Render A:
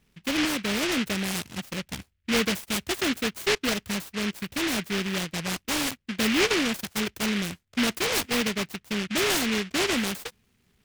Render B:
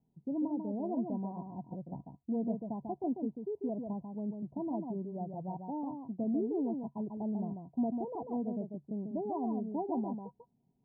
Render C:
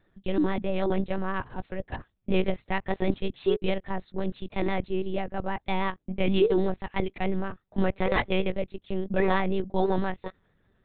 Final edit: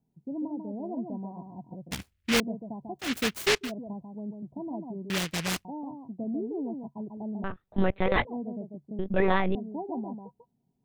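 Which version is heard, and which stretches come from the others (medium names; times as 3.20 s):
B
1.91–2.40 s: from A
3.07–3.64 s: from A, crossfade 0.16 s
5.10–5.65 s: from A
7.44–8.25 s: from C
8.99–9.55 s: from C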